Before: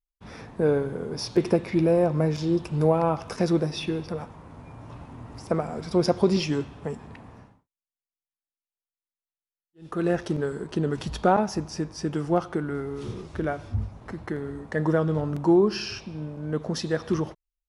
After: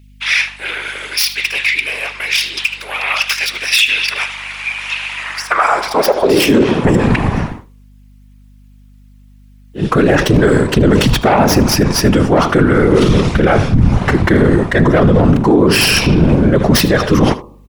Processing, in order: tracing distortion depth 0.18 ms; bell 2400 Hz +6 dB 1.4 oct; de-hum 217 Hz, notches 5; reverse; compressor 12:1, threshold -31 dBFS, peak gain reduction 17 dB; reverse; high-pass sweep 2500 Hz -> 74 Hz, 5.13–7.53; whisperiser; hum 50 Hz, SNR 34 dB; on a send: echo 76 ms -19.5 dB; on the sum: maximiser +29.5 dB; gain -1 dB

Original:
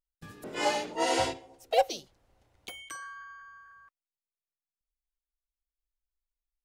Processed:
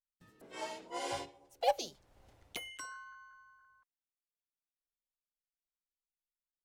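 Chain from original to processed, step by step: Doppler pass-by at 2.3, 20 m/s, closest 4.2 m; gain +4.5 dB

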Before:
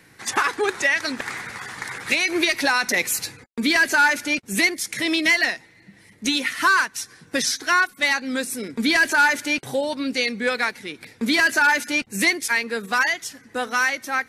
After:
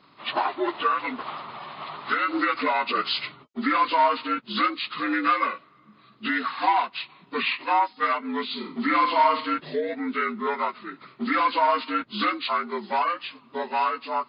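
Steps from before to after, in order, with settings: inharmonic rescaling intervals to 75%; low shelf 80 Hz -6 dB; 8.46–9.54 flutter echo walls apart 7.8 m, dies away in 0.37 s; gain -2.5 dB

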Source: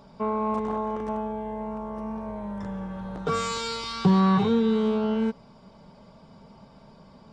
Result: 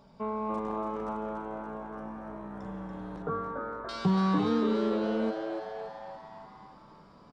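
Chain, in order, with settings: 1.38–2.66 AM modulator 62 Hz, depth 35%; 3.22–3.89 steep low-pass 1600 Hz 48 dB/oct; frequency-shifting echo 0.286 s, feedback 60%, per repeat +110 Hz, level -6.5 dB; gain -6.5 dB

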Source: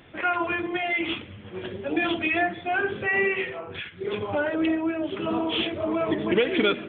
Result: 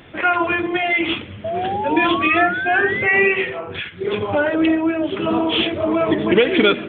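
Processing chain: painted sound rise, 1.44–3.32, 640–2600 Hz -31 dBFS; gain +7.5 dB

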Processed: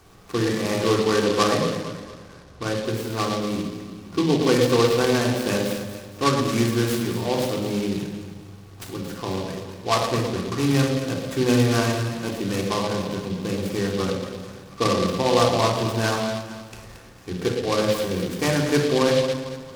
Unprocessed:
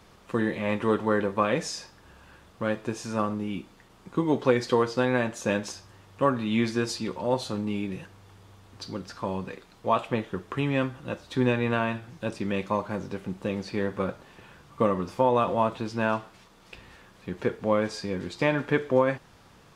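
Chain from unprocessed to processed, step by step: 1.24–2.84 LPF 2200 Hz 24 dB/oct; echo with dull and thin repeats by turns 0.113 s, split 890 Hz, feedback 65%, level -6 dB; shoebox room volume 2400 m³, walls furnished, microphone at 3.5 m; noise-modulated delay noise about 3300 Hz, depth 0.071 ms

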